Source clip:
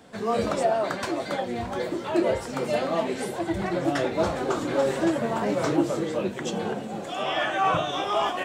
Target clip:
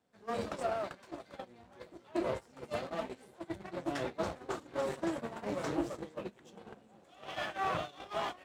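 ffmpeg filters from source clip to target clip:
-af "aeval=exprs='if(lt(val(0),0),0.251*val(0),val(0))':c=same,highpass=f=49:w=0.5412,highpass=f=49:w=1.3066,agate=range=0.158:threshold=0.0355:ratio=16:detection=peak,volume=0.422"

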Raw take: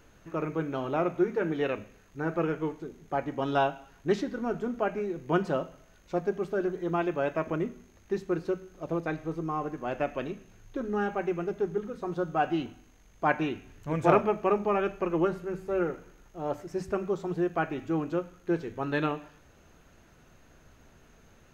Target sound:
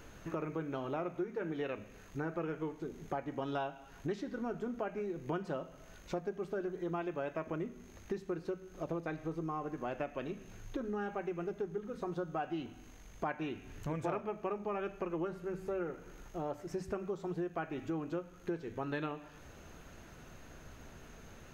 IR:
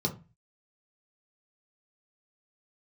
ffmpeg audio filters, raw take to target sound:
-af "acompressor=threshold=0.00794:ratio=4,volume=1.68"

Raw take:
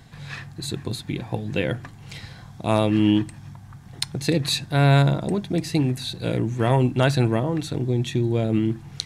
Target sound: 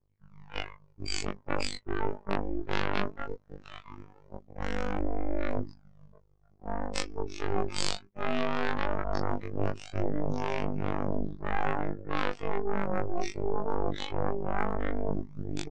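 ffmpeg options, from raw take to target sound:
-filter_complex "[0:a]equalizer=f=10000:t=o:w=0.79:g=10,asplit=2[s0][s1];[s1]adelay=1166,volume=0.224,highshelf=f=4000:g=-26.2[s2];[s0][s2]amix=inputs=2:normalize=0,afftdn=nr=18:nf=-32,dynaudnorm=f=110:g=13:m=3.16,acrossover=split=240 2800:gain=0.126 1 0.158[s3][s4][s5];[s3][s4][s5]amix=inputs=3:normalize=0,aphaser=in_gain=1:out_gain=1:delay=3.3:decay=0.75:speed=0.33:type=triangular,alimiter=limit=0.398:level=0:latency=1:release=350,areverse,acompressor=threshold=0.0447:ratio=10,areverse,aeval=exprs='0.141*(cos(1*acos(clip(val(0)/0.141,-1,1)))-cos(1*PI/2))+0.0562*(cos(3*acos(clip(val(0)/0.141,-1,1)))-cos(3*PI/2))+0.0178*(cos(6*acos(clip(val(0)/0.141,-1,1)))-cos(6*PI/2))+0.0631*(cos(8*acos(clip(val(0)/0.141,-1,1)))-cos(8*PI/2))':c=same,afftfilt=real='hypot(re,im)*cos(PI*b)':imag='0':win_size=2048:overlap=0.75,aresample=32000,aresample=44100,asetrate=25442,aresample=44100,volume=1.26"

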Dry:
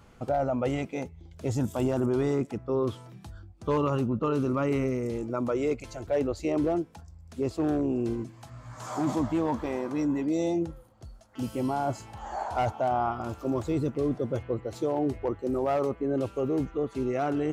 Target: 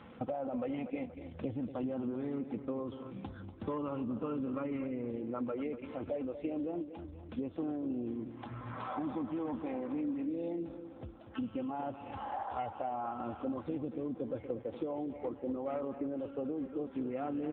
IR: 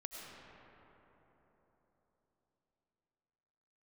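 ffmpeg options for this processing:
-filter_complex "[0:a]aecho=1:1:3.8:0.49,asettb=1/sr,asplit=3[s0][s1][s2];[s0]atrim=end=6.104[s3];[s1]atrim=start=6.1:end=7.4,asetpts=PTS-STARTPTS,afade=t=in:d=0.004:c=qsin,afade=t=out:st=1.296:d=0.004:c=qsin,adynamicequalizer=threshold=0.00631:dfrequency=1400:dqfactor=0.75:tfrequency=1400:tqfactor=0.75:attack=5:release=100:ratio=0.375:range=1.5:mode=cutabove:tftype=bell[s4];[s2]atrim=start=7.396[s5];[s3][s4]acrossfade=d=0.004:c1=hsin:c2=qsin[s6];[s6][s5]acrossfade=d=0.004:c1=qsin:c2=hsin,acompressor=threshold=0.00891:ratio=6,asplit=2[s7][s8];[s8]aecho=0:1:239|478|717|956|1195:0.282|0.141|0.0705|0.0352|0.0176[s9];[s7][s9]amix=inputs=2:normalize=0,volume=1.88" -ar 8000 -c:a libopencore_amrnb -b:a 7400

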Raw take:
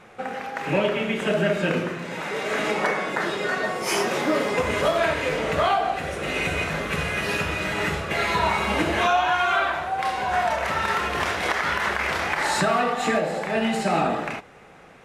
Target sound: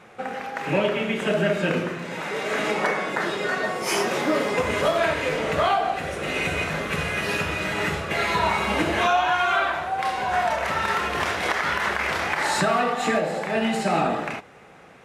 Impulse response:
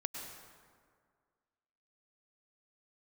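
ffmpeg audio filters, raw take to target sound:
-af "highpass=62"

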